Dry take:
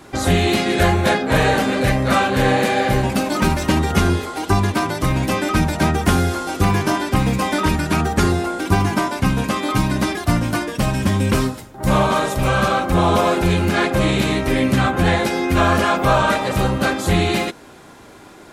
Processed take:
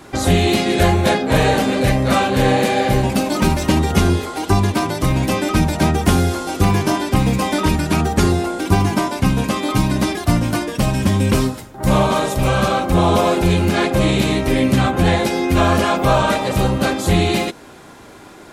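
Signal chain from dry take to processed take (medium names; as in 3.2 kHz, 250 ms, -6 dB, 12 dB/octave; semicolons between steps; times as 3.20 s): dynamic bell 1.5 kHz, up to -5 dB, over -32 dBFS, Q 1.3; trim +2 dB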